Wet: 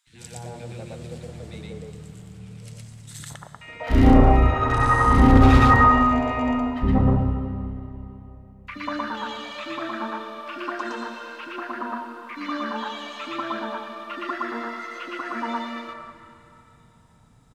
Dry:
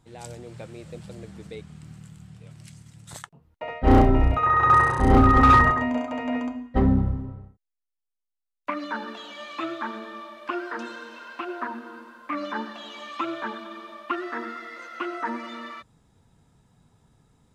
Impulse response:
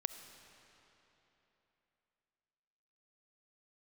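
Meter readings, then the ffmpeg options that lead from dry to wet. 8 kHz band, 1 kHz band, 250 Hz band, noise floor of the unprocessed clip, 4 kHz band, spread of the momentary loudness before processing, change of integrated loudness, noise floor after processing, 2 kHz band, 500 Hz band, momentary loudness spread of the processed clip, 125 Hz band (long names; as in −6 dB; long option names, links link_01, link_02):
can't be measured, +0.5 dB, +3.5 dB, −83 dBFS, +4.0 dB, 24 LU, +1.5 dB, −53 dBFS, +1.0 dB, +1.5 dB, 24 LU, +4.0 dB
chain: -filter_complex "[0:a]acrossover=split=360|1500[link_01][link_02][link_03];[link_01]adelay=70[link_04];[link_02]adelay=190[link_05];[link_04][link_05][link_03]amix=inputs=3:normalize=0,asplit=2[link_06][link_07];[1:a]atrim=start_sample=2205,adelay=116[link_08];[link_07][link_08]afir=irnorm=-1:irlink=0,volume=1.5dB[link_09];[link_06][link_09]amix=inputs=2:normalize=0,volume=1dB"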